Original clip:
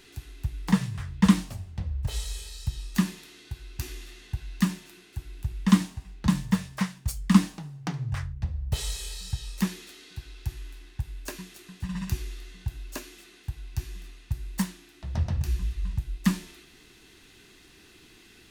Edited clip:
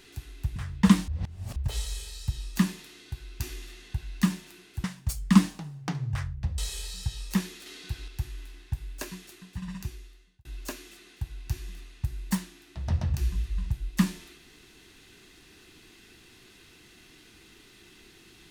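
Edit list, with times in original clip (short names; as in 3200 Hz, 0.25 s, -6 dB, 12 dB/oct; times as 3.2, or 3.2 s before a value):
0.56–0.95 cut
1.47–1.95 reverse
5.23–6.83 cut
8.57–8.85 cut
9.93–10.35 gain +4.5 dB
11.43–12.72 fade out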